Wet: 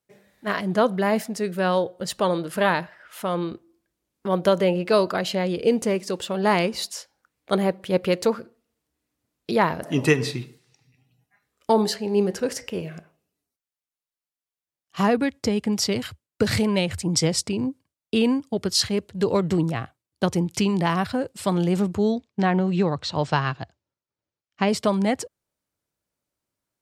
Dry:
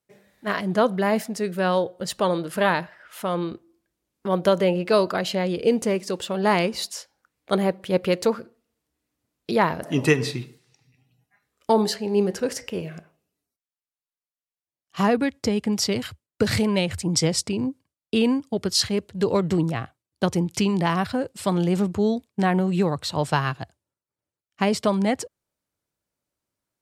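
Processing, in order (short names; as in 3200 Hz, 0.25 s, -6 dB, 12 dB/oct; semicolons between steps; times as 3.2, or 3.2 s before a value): 22.12–24.69 LPF 6400 Hz 24 dB/oct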